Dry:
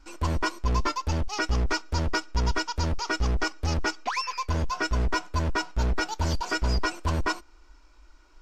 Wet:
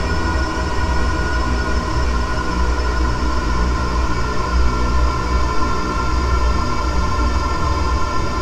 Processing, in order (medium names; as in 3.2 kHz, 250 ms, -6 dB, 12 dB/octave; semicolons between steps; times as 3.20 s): local Wiener filter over 25 samples; Paulstretch 17×, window 1.00 s, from 0.47 s; trim +9 dB